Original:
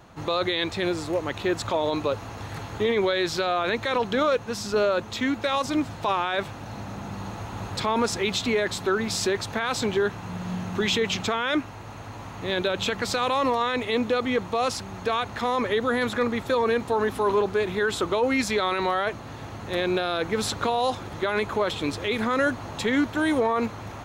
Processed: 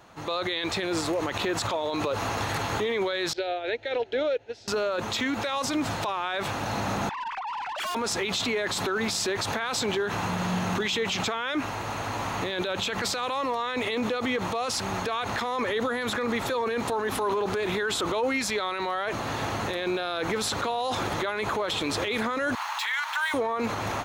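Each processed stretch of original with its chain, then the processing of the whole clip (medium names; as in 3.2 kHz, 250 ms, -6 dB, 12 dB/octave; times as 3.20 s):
3.33–4.68 s: low-pass 3.1 kHz + static phaser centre 460 Hz, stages 4 + upward expansion 2.5:1, over -33 dBFS
7.09–7.95 s: formants replaced by sine waves + valve stage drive 41 dB, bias 0.2
22.55–23.34 s: median filter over 5 samples + elliptic high-pass 890 Hz, stop band 70 dB
whole clip: bass shelf 270 Hz -9.5 dB; level rider gain up to 13 dB; peak limiter -19.5 dBFS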